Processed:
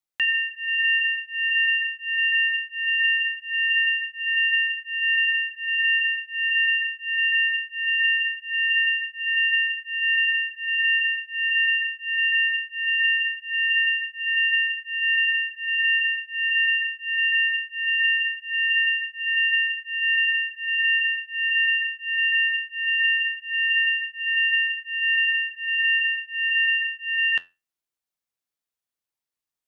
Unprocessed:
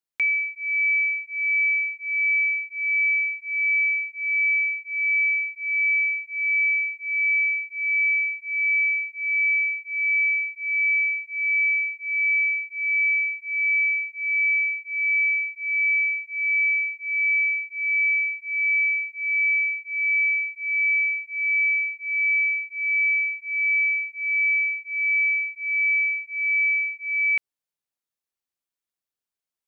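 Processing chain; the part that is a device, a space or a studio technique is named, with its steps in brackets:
alien voice (ring modulation 480 Hz; flanger 0.2 Hz, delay 6.3 ms, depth 5.4 ms, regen −73%)
level +7.5 dB

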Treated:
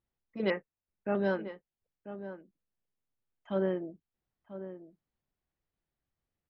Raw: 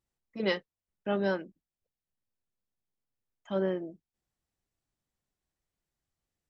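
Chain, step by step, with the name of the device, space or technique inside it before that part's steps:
shout across a valley (high-frequency loss of the air 220 metres; slap from a distant wall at 170 metres, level −12 dB)
0:00.50–0:01.15: Chebyshev low-pass filter 2,700 Hz, order 8

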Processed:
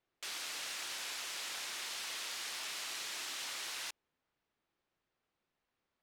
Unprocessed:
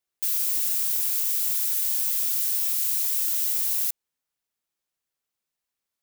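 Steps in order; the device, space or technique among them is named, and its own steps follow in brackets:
phone in a pocket (low-pass filter 4,000 Hz 12 dB per octave; parametric band 330 Hz +3 dB 0.4 octaves; high-shelf EQ 2,300 Hz −9.5 dB)
level +8.5 dB

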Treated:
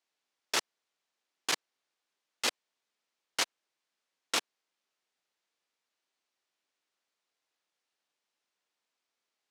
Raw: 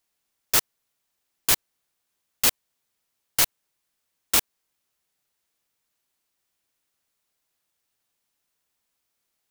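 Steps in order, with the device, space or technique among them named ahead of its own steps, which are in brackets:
public-address speaker with an overloaded transformer (saturating transformer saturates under 900 Hz; band-pass filter 280–5,600 Hz)
level −3 dB

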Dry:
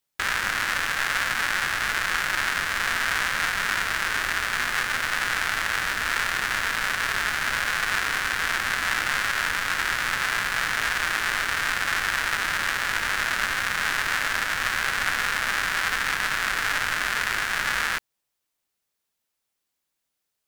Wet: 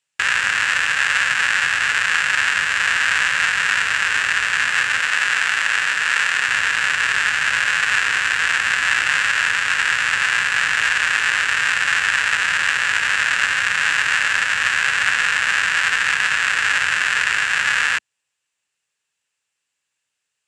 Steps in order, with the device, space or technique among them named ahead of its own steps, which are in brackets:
0:05.00–0:06.48: high-pass filter 210 Hz 6 dB per octave
car door speaker (loudspeaker in its box 89–9,200 Hz, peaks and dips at 220 Hz −8 dB, 340 Hz −7 dB, 670 Hz −5 dB, 1,700 Hz +7 dB, 2,700 Hz +10 dB, 7,500 Hz +8 dB)
level +2 dB

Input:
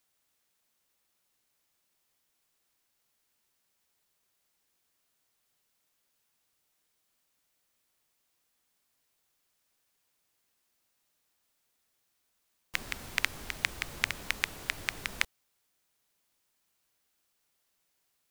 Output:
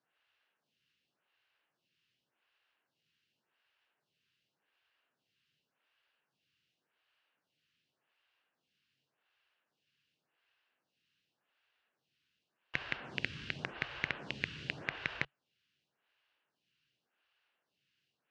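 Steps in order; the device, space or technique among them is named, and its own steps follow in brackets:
vibe pedal into a guitar amplifier (phaser with staggered stages 0.88 Hz; tube saturation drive 28 dB, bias 0.75; loudspeaker in its box 82–4,500 Hz, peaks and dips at 140 Hz +8 dB, 1,600 Hz +7 dB, 2,800 Hz +10 dB)
level +5.5 dB

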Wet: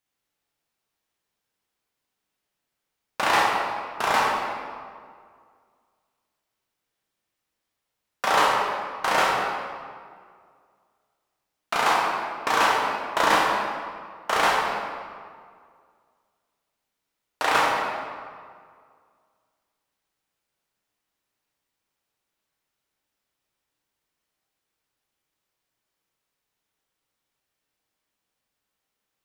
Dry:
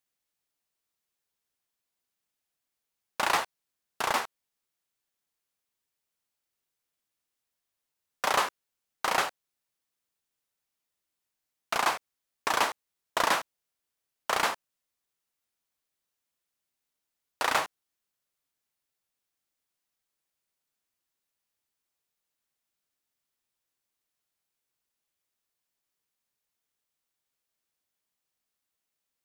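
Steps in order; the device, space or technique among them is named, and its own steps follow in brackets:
swimming-pool hall (convolution reverb RT60 2.0 s, pre-delay 12 ms, DRR −3.5 dB; high-shelf EQ 4,600 Hz −6.5 dB)
level +3 dB

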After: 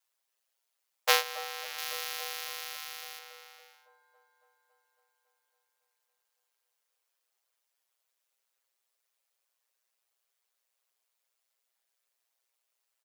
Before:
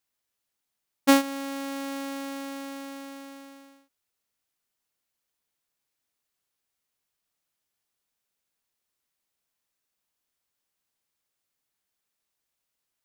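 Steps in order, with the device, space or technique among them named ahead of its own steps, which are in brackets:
Butterworth high-pass 450 Hz 96 dB per octave
ring-modulated robot voice (ring modulation 60 Hz; comb filter 7.4 ms, depth 97%)
0:01.78–0:03.19: spectral tilt +2 dB per octave
delay with a low-pass on its return 278 ms, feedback 71%, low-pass 890 Hz, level −11 dB
level +1 dB

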